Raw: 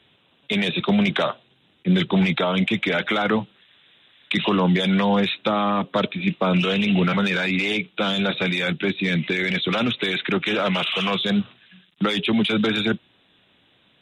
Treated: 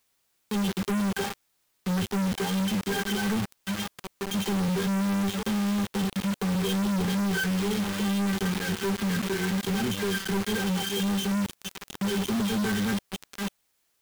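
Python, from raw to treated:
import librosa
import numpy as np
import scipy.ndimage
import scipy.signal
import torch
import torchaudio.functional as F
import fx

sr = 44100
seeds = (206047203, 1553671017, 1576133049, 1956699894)

y = fx.octave_resonator(x, sr, note='G', decay_s=0.14)
y = fx.echo_stepped(y, sr, ms=691, hz=2500.0, octaves=-1.4, feedback_pct=70, wet_db=-6.0)
y = fx.wow_flutter(y, sr, seeds[0], rate_hz=2.1, depth_cents=31.0)
y = fx.notch(y, sr, hz=3400.0, q=25.0)
y = fx.quant_companded(y, sr, bits=2)
y = fx.peak_eq(y, sr, hz=620.0, db=-8.0, octaves=0.31)
y = fx.quant_dither(y, sr, seeds[1], bits=12, dither='triangular')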